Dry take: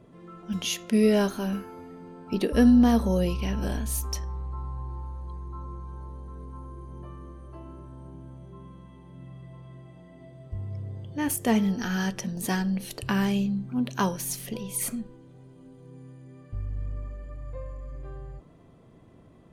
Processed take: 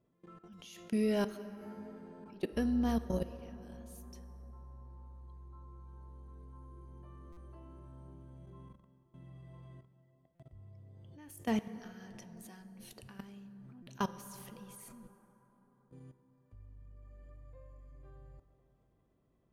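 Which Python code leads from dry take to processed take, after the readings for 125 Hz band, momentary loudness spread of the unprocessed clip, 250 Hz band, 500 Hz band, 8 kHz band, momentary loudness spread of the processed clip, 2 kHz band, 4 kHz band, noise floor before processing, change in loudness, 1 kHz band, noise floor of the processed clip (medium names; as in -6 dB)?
-14.5 dB, 22 LU, -13.5 dB, -11.0 dB, -20.5 dB, 23 LU, -14.5 dB, -16.0 dB, -53 dBFS, -12.0 dB, -11.5 dB, -72 dBFS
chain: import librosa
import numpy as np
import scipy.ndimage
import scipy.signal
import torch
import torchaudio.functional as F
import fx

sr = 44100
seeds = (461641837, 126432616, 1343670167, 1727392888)

y = fx.level_steps(x, sr, step_db=23)
y = fx.rev_plate(y, sr, seeds[0], rt60_s=4.2, hf_ratio=0.4, predelay_ms=0, drr_db=12.0)
y = fx.buffer_glitch(y, sr, at_s=(7.32, 10.35, 13.82), block=256, repeats=7)
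y = F.gain(torch.from_numpy(y), -7.0).numpy()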